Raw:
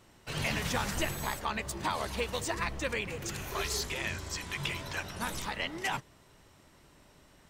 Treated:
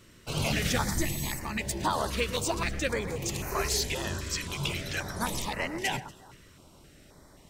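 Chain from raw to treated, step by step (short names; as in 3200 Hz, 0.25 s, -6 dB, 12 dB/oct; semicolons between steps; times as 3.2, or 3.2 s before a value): spectral gain 0.83–1.61, 370–1700 Hz -10 dB; on a send: echo with dull and thin repeats by turns 0.118 s, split 2200 Hz, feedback 52%, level -13 dB; on the sum: stepped notch 3.8 Hz 800–3400 Hz; gain +5.5 dB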